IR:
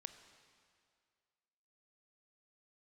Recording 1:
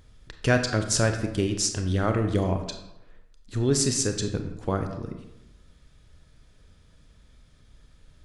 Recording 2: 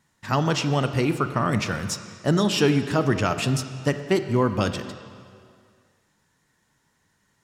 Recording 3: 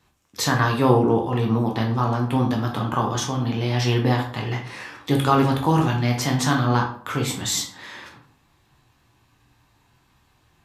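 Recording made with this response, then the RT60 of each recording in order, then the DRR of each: 2; 0.90, 2.2, 0.55 seconds; 6.0, 9.0, 0.0 decibels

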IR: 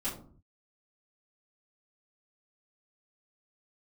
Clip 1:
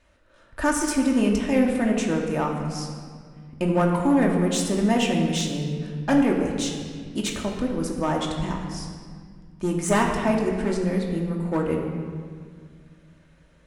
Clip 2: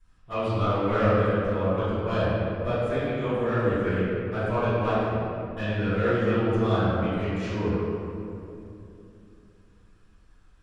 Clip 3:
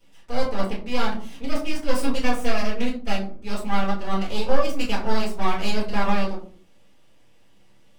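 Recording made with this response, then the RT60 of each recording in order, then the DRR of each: 3; 1.9, 2.8, 0.50 seconds; −0.5, −17.5, −11.5 decibels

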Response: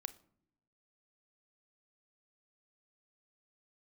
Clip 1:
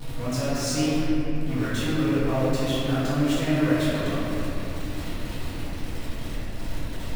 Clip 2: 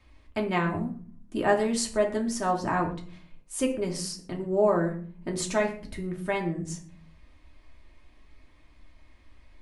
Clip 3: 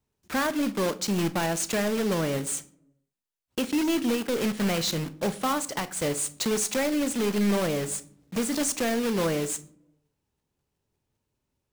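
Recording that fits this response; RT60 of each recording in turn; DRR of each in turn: 3; non-exponential decay, 0.45 s, non-exponential decay; −13.0, 0.0, 12.5 decibels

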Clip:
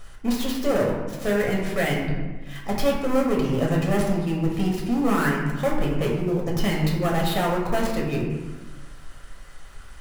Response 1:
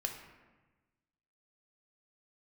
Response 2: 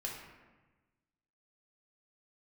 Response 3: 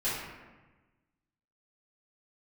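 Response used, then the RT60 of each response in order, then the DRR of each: 2; 1.2, 1.2, 1.2 seconds; 2.5, −3.0, −12.5 decibels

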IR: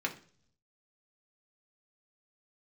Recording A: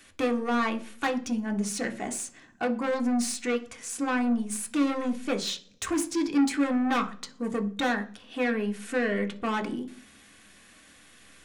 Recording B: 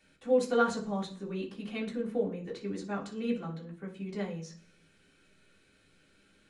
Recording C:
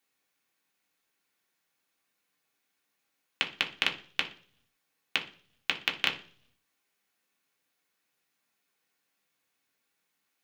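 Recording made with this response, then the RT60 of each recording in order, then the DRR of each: C; 0.50, 0.50, 0.50 seconds; 4.5, −7.5, 0.0 decibels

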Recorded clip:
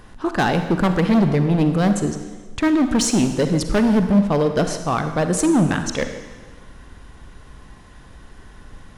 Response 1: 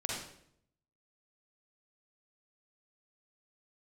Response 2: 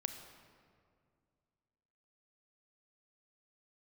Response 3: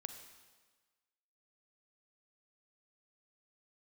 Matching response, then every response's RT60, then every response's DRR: 3; 0.70, 2.2, 1.4 seconds; −4.0, 7.0, 7.0 decibels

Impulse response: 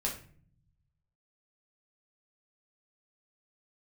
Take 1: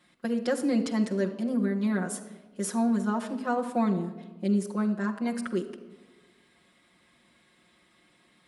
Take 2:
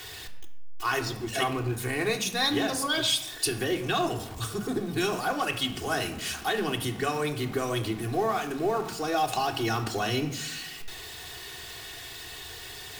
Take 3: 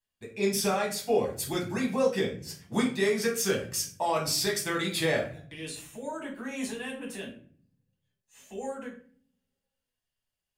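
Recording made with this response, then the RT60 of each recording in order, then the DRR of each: 3; 1.3, 0.85, 0.50 seconds; −2.0, 0.5, −2.5 decibels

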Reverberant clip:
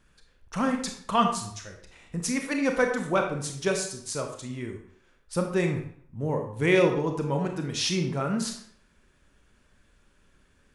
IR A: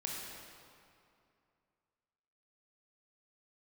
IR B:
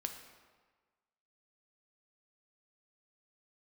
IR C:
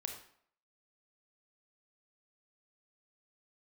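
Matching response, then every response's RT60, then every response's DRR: C; 2.5, 1.4, 0.60 seconds; −2.5, 4.5, 3.5 decibels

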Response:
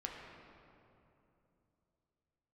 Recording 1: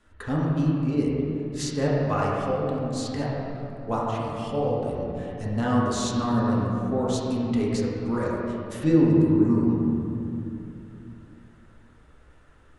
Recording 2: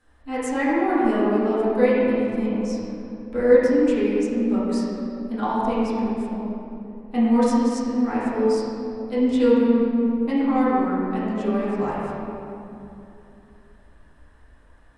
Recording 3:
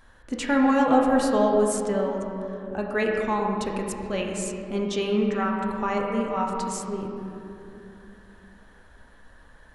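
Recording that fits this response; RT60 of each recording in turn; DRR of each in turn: 3; 2.9, 2.9, 2.9 seconds; −6.0, −11.0, −1.0 decibels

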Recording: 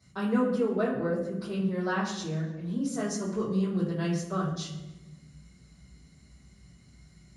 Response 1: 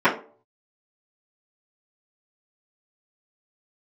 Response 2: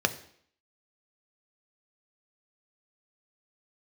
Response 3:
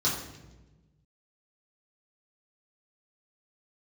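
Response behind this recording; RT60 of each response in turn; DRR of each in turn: 3; 0.45, 0.60, 1.1 seconds; −13.0, 8.0, −8.0 decibels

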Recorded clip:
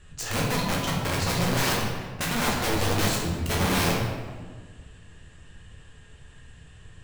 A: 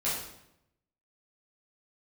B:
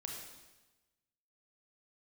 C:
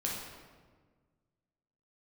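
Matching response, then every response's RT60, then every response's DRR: C; 0.80, 1.1, 1.5 seconds; −10.0, 0.0, −3.5 decibels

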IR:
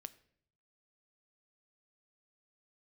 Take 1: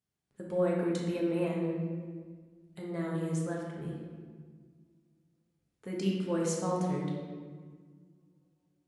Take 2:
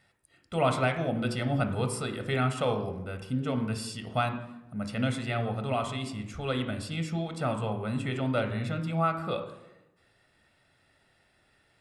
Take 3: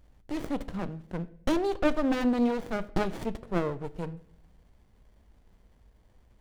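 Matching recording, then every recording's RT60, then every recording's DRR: 3; 1.6, 0.95, 0.65 seconds; −3.0, 6.5, 13.5 decibels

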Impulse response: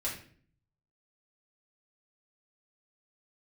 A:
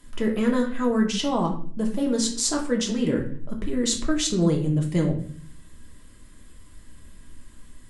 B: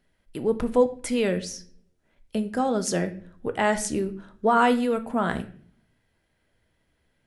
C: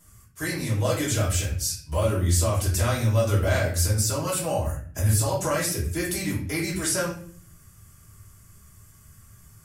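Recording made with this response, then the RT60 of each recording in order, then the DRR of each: C; 0.50, 0.50, 0.50 seconds; 0.0, 8.0, −6.5 decibels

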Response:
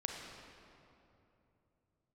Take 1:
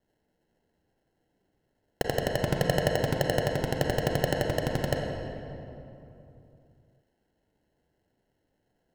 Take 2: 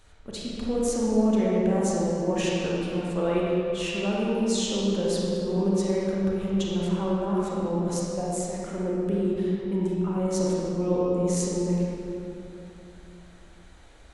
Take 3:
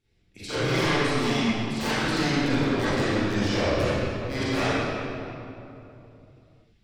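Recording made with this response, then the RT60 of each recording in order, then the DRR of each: 1; 3.0, 3.0, 3.0 seconds; 0.5, −5.5, −13.5 decibels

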